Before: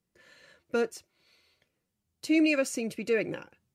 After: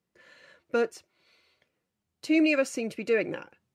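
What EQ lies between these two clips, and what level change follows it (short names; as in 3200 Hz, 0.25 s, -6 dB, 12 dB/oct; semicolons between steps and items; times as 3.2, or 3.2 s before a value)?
HPF 1200 Hz 6 dB/oct; tilt -3.5 dB/oct; +7.0 dB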